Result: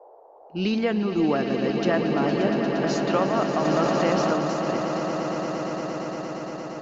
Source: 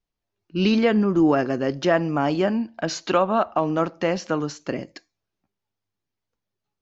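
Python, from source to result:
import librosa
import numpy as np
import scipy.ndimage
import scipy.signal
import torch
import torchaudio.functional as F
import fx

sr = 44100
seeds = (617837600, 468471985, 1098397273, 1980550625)

p1 = fx.dmg_noise_band(x, sr, seeds[0], low_hz=410.0, high_hz=880.0, level_db=-45.0)
p2 = p1 + fx.echo_swell(p1, sr, ms=116, loudest=8, wet_db=-10.0, dry=0)
p3 = fx.env_flatten(p2, sr, amount_pct=50, at=(3.64, 4.32), fade=0.02)
y = F.gain(torch.from_numpy(p3), -5.0).numpy()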